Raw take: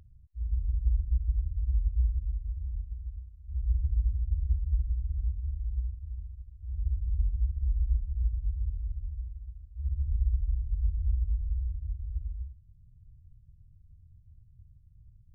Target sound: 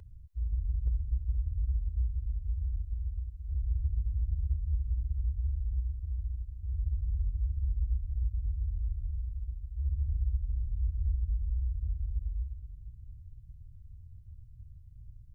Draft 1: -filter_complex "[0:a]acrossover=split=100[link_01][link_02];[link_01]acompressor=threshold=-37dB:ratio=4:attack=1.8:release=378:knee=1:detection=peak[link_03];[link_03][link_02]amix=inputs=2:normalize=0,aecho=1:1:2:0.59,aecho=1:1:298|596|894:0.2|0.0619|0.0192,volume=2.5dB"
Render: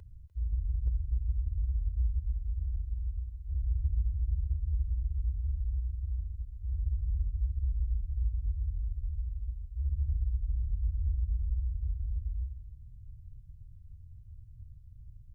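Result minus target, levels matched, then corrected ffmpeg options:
echo 176 ms early
-filter_complex "[0:a]acrossover=split=100[link_01][link_02];[link_01]acompressor=threshold=-37dB:ratio=4:attack=1.8:release=378:knee=1:detection=peak[link_03];[link_03][link_02]amix=inputs=2:normalize=0,aecho=1:1:2:0.59,aecho=1:1:474|948|1422:0.2|0.0619|0.0192,volume=2.5dB"

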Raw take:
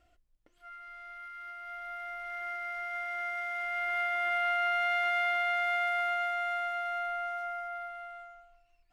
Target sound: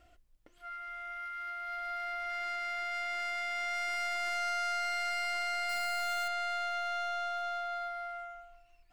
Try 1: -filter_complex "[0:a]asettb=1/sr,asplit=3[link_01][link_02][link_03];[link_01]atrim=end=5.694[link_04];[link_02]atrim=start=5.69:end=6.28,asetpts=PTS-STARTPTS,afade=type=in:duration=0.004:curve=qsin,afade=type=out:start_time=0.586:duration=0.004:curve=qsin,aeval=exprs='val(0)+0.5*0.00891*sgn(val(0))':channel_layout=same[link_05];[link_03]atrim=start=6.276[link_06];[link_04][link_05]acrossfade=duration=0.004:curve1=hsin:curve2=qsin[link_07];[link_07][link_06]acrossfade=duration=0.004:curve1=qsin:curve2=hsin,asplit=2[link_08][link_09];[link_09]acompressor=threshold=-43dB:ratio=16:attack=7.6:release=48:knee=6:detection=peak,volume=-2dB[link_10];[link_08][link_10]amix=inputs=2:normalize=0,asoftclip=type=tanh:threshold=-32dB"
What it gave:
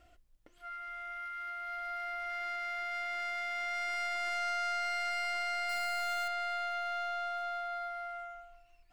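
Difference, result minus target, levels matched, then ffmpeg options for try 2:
downward compressor: peak gain reduction +11 dB
-filter_complex "[0:a]asettb=1/sr,asplit=3[link_01][link_02][link_03];[link_01]atrim=end=5.694[link_04];[link_02]atrim=start=5.69:end=6.28,asetpts=PTS-STARTPTS,afade=type=in:duration=0.004:curve=qsin,afade=type=out:start_time=0.586:duration=0.004:curve=qsin,aeval=exprs='val(0)+0.5*0.00891*sgn(val(0))':channel_layout=same[link_05];[link_03]atrim=start=6.276[link_06];[link_04][link_05]acrossfade=duration=0.004:curve1=hsin:curve2=qsin[link_07];[link_07][link_06]acrossfade=duration=0.004:curve1=qsin:curve2=hsin,asplit=2[link_08][link_09];[link_09]acompressor=threshold=-31dB:ratio=16:attack=7.6:release=48:knee=6:detection=peak,volume=-2dB[link_10];[link_08][link_10]amix=inputs=2:normalize=0,asoftclip=type=tanh:threshold=-32dB"

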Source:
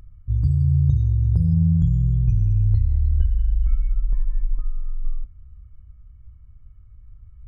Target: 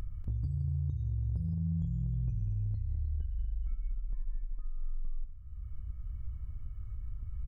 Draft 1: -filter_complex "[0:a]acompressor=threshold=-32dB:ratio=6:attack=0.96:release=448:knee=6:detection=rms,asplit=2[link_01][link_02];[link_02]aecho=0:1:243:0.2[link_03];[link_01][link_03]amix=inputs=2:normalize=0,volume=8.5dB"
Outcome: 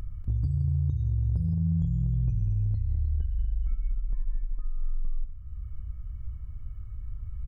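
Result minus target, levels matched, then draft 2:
downward compressor: peak gain reduction −6.5 dB
-filter_complex "[0:a]acompressor=threshold=-40dB:ratio=6:attack=0.96:release=448:knee=6:detection=rms,asplit=2[link_01][link_02];[link_02]aecho=0:1:243:0.2[link_03];[link_01][link_03]amix=inputs=2:normalize=0,volume=8.5dB"

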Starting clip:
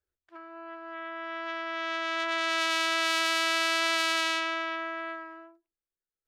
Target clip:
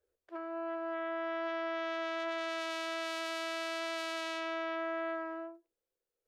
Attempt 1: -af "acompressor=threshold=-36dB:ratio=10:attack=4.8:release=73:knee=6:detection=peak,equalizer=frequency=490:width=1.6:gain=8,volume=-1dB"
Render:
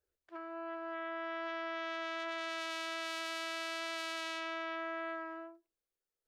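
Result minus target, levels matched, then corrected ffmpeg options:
500 Hz band −3.0 dB
-af "acompressor=threshold=-36dB:ratio=10:attack=4.8:release=73:knee=6:detection=peak,equalizer=frequency=490:width=1.6:gain=19,volume=-1dB"

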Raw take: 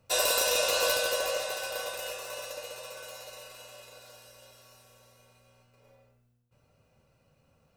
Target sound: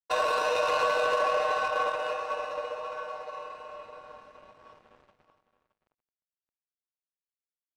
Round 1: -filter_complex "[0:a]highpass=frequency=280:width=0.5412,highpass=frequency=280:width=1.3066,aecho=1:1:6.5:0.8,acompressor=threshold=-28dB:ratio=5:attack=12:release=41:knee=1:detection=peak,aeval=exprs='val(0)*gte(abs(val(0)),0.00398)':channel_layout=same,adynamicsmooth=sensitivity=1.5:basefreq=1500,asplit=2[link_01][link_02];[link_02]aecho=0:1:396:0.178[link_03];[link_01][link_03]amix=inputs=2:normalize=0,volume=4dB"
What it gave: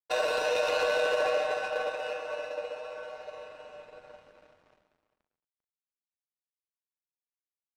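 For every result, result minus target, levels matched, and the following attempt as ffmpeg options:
echo 223 ms early; 1,000 Hz band −5.5 dB
-filter_complex "[0:a]highpass=frequency=280:width=0.5412,highpass=frequency=280:width=1.3066,aecho=1:1:6.5:0.8,acompressor=threshold=-28dB:ratio=5:attack=12:release=41:knee=1:detection=peak,aeval=exprs='val(0)*gte(abs(val(0)),0.00398)':channel_layout=same,adynamicsmooth=sensitivity=1.5:basefreq=1500,asplit=2[link_01][link_02];[link_02]aecho=0:1:619:0.178[link_03];[link_01][link_03]amix=inputs=2:normalize=0,volume=4dB"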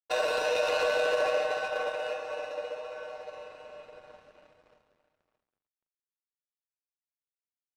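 1,000 Hz band −5.5 dB
-filter_complex "[0:a]highpass=frequency=280:width=0.5412,highpass=frequency=280:width=1.3066,equalizer=frequency=1100:width=4:gain=13.5,aecho=1:1:6.5:0.8,acompressor=threshold=-28dB:ratio=5:attack=12:release=41:knee=1:detection=peak,aeval=exprs='val(0)*gte(abs(val(0)),0.00398)':channel_layout=same,adynamicsmooth=sensitivity=1.5:basefreq=1500,asplit=2[link_01][link_02];[link_02]aecho=0:1:619:0.178[link_03];[link_01][link_03]amix=inputs=2:normalize=0,volume=4dB"

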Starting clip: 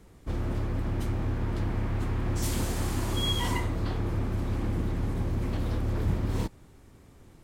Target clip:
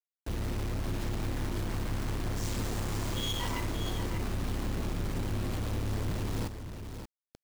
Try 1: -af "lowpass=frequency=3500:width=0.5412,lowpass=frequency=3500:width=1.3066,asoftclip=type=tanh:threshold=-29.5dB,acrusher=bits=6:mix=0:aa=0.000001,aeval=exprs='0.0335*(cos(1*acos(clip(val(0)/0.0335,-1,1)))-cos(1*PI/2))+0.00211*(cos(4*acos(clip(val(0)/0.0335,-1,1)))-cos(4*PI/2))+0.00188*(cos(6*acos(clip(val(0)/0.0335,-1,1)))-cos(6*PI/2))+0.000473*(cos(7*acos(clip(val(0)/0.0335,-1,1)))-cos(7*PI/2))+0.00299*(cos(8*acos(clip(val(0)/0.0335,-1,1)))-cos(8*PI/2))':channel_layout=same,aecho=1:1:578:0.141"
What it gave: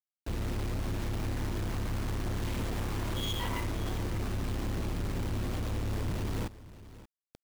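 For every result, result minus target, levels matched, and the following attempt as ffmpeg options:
echo-to-direct −8.5 dB; 8,000 Hz band −3.0 dB
-af "lowpass=frequency=3500:width=0.5412,lowpass=frequency=3500:width=1.3066,asoftclip=type=tanh:threshold=-29.5dB,acrusher=bits=6:mix=0:aa=0.000001,aeval=exprs='0.0335*(cos(1*acos(clip(val(0)/0.0335,-1,1)))-cos(1*PI/2))+0.00211*(cos(4*acos(clip(val(0)/0.0335,-1,1)))-cos(4*PI/2))+0.00188*(cos(6*acos(clip(val(0)/0.0335,-1,1)))-cos(6*PI/2))+0.000473*(cos(7*acos(clip(val(0)/0.0335,-1,1)))-cos(7*PI/2))+0.00299*(cos(8*acos(clip(val(0)/0.0335,-1,1)))-cos(8*PI/2))':channel_layout=same,aecho=1:1:578:0.376"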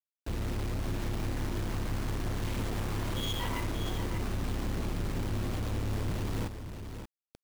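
8,000 Hz band −2.5 dB
-af "lowpass=frequency=7800:width=0.5412,lowpass=frequency=7800:width=1.3066,asoftclip=type=tanh:threshold=-29.5dB,acrusher=bits=6:mix=0:aa=0.000001,aeval=exprs='0.0335*(cos(1*acos(clip(val(0)/0.0335,-1,1)))-cos(1*PI/2))+0.00211*(cos(4*acos(clip(val(0)/0.0335,-1,1)))-cos(4*PI/2))+0.00188*(cos(6*acos(clip(val(0)/0.0335,-1,1)))-cos(6*PI/2))+0.000473*(cos(7*acos(clip(val(0)/0.0335,-1,1)))-cos(7*PI/2))+0.00299*(cos(8*acos(clip(val(0)/0.0335,-1,1)))-cos(8*PI/2))':channel_layout=same,aecho=1:1:578:0.376"

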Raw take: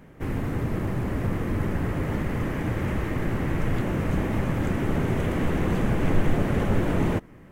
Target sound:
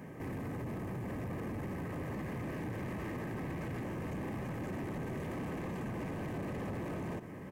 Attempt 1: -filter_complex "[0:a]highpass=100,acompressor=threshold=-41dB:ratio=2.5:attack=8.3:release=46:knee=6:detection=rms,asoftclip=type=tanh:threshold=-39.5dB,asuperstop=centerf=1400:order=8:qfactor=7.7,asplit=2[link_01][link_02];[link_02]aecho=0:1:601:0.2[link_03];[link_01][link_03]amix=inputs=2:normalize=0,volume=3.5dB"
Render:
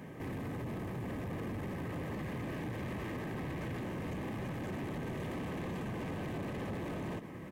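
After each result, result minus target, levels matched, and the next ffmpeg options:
echo 269 ms early; 4,000 Hz band +4.5 dB
-filter_complex "[0:a]highpass=100,acompressor=threshold=-41dB:ratio=2.5:attack=8.3:release=46:knee=6:detection=rms,asoftclip=type=tanh:threshold=-39.5dB,asuperstop=centerf=1400:order=8:qfactor=7.7,asplit=2[link_01][link_02];[link_02]aecho=0:1:870:0.2[link_03];[link_01][link_03]amix=inputs=2:normalize=0,volume=3.5dB"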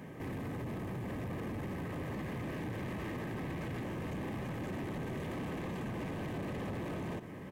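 4,000 Hz band +4.5 dB
-filter_complex "[0:a]highpass=100,acompressor=threshold=-41dB:ratio=2.5:attack=8.3:release=46:knee=6:detection=rms,asoftclip=type=tanh:threshold=-39.5dB,asuperstop=centerf=1400:order=8:qfactor=7.7,equalizer=frequency=3500:width_type=o:width=0.67:gain=-6.5,asplit=2[link_01][link_02];[link_02]aecho=0:1:870:0.2[link_03];[link_01][link_03]amix=inputs=2:normalize=0,volume=3.5dB"

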